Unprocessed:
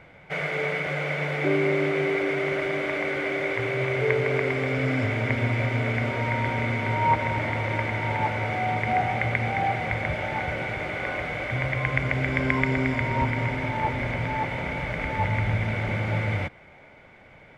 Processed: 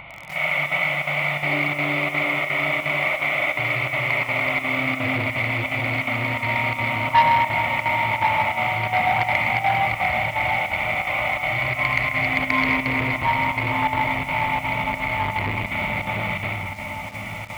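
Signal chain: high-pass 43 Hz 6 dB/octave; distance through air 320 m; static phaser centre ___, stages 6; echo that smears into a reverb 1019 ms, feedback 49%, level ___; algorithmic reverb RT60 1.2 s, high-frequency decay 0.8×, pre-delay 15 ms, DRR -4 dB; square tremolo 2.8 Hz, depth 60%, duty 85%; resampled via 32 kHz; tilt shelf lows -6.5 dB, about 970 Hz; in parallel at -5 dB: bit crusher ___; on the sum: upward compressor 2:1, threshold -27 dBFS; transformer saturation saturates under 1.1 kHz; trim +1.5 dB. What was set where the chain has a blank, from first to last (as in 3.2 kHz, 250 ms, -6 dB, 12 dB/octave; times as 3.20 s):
1.6 kHz, -10 dB, 7-bit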